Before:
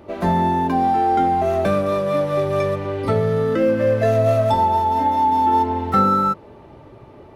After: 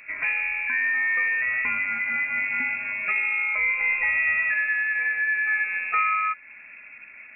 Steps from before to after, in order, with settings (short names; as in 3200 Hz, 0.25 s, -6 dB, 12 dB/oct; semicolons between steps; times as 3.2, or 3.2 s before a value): inverted band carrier 2600 Hz; de-hum 286.6 Hz, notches 13; in parallel at +1 dB: compressor, threshold -29 dBFS, peak gain reduction 16 dB; on the sum: gain -8.5 dB